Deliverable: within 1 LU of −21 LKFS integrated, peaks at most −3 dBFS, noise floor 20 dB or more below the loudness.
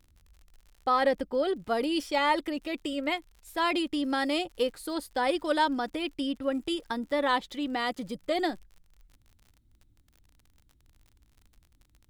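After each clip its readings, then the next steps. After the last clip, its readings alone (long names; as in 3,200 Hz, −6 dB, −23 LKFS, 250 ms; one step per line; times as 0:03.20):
crackle rate 50 per second; integrated loudness −29.5 LKFS; sample peak −13.5 dBFS; target loudness −21.0 LKFS
→ click removal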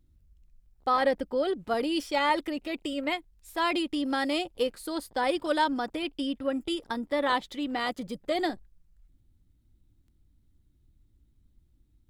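crackle rate 1.7 per second; integrated loudness −29.5 LKFS; sample peak −13.5 dBFS; target loudness −21.0 LKFS
→ level +8.5 dB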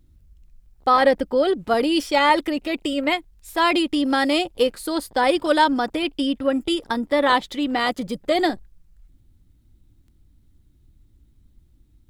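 integrated loudness −21.0 LKFS; sample peak −5.0 dBFS; background noise floor −58 dBFS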